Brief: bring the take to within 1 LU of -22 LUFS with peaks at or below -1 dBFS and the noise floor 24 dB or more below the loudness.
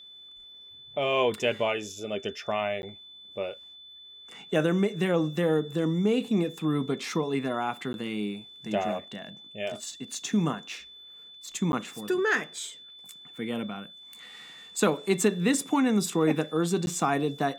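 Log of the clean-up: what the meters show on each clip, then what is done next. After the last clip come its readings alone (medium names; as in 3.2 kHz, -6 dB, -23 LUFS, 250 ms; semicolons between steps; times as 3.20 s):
dropouts 4; longest dropout 11 ms; steady tone 3.5 kHz; tone level -46 dBFS; loudness -28.5 LUFS; peak level -9.0 dBFS; loudness target -22.0 LUFS
-> interpolate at 2.82/7.93/11.72/16.86 s, 11 ms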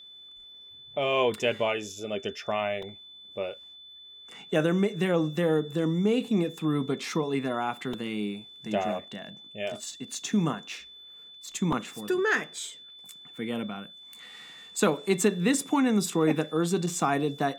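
dropouts 0; steady tone 3.5 kHz; tone level -46 dBFS
-> band-stop 3.5 kHz, Q 30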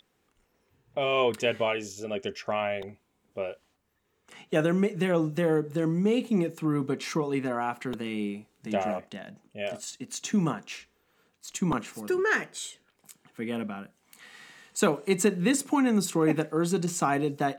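steady tone not found; loudness -28.5 LUFS; peak level -9.0 dBFS; loudness target -22.0 LUFS
-> trim +6.5 dB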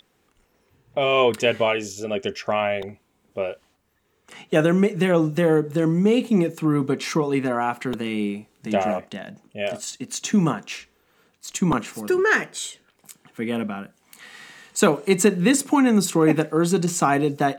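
loudness -22.0 LUFS; peak level -2.5 dBFS; noise floor -66 dBFS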